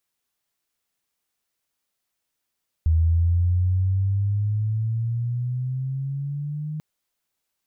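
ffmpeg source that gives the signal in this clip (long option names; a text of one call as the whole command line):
ffmpeg -f lavfi -i "aevalsrc='pow(10,(-15-12*t/3.94)/20)*sin(2*PI*79.6*3.94/(11.5*log(2)/12)*(exp(11.5*log(2)/12*t/3.94)-1))':duration=3.94:sample_rate=44100" out.wav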